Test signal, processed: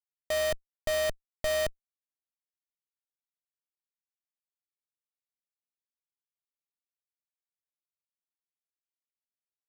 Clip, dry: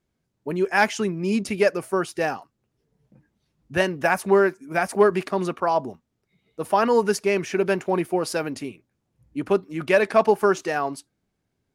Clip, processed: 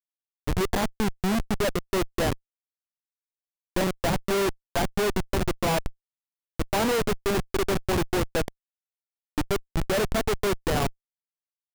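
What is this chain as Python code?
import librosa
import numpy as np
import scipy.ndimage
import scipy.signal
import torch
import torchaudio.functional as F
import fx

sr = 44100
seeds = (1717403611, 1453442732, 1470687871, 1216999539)

y = fx.delta_mod(x, sr, bps=16000, step_db=-29.0)
y = fx.schmitt(y, sr, flips_db=-23.0)
y = F.gain(torch.from_numpy(y), 2.0).numpy()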